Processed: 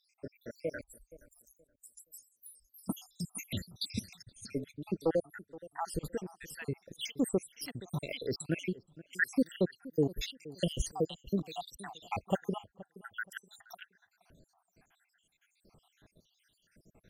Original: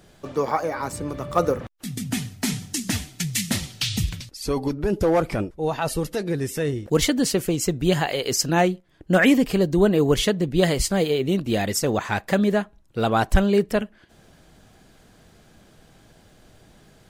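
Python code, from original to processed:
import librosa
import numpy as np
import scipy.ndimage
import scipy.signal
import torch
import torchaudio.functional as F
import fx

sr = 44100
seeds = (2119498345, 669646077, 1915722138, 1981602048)

y = fx.spec_dropout(x, sr, seeds[0], share_pct=81)
y = fx.cheby2_bandstop(y, sr, low_hz=110.0, high_hz=3200.0, order=4, stop_db=50, at=(0.81, 2.86))
y = fx.echo_filtered(y, sr, ms=473, feedback_pct=28, hz=990.0, wet_db=-18)
y = y * librosa.db_to_amplitude(-7.5)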